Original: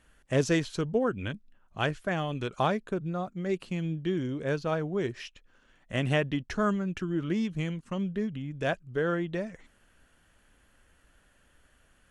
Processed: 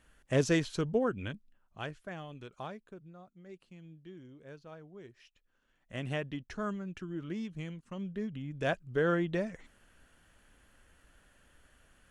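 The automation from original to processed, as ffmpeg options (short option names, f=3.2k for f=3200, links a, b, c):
-af "volume=18dB,afade=t=out:st=0.91:d=0.94:silence=0.334965,afade=t=out:st=1.85:d=1.32:silence=0.375837,afade=t=in:st=5.17:d=0.89:silence=0.281838,afade=t=in:st=7.94:d=1.15:silence=0.354813"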